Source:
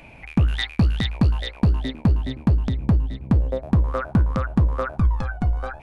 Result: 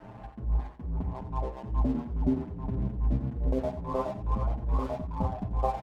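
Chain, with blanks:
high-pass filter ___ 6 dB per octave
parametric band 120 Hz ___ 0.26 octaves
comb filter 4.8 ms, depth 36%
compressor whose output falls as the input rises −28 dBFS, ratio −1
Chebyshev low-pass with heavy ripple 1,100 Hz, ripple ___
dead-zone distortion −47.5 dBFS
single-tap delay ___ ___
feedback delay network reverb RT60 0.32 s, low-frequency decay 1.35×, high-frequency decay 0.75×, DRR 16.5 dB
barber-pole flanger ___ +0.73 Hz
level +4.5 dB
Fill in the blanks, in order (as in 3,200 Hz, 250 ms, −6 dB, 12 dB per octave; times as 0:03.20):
65 Hz, +7 dB, 3 dB, 88 ms, −12 dB, 7.3 ms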